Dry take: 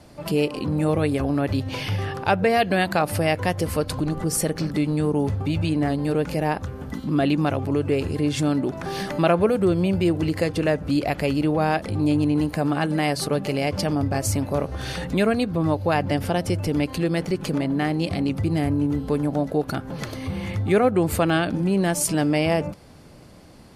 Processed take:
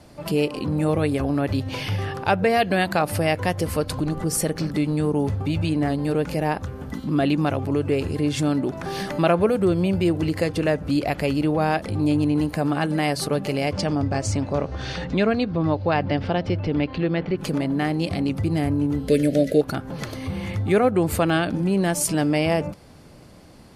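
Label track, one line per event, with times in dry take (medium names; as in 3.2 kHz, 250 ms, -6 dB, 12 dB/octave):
13.730000	17.370000	low-pass 8.5 kHz -> 3.4 kHz 24 dB/octave
19.080000	19.610000	FFT filter 120 Hz 0 dB, 600 Hz +7 dB, 910 Hz -25 dB, 1.9 kHz +11 dB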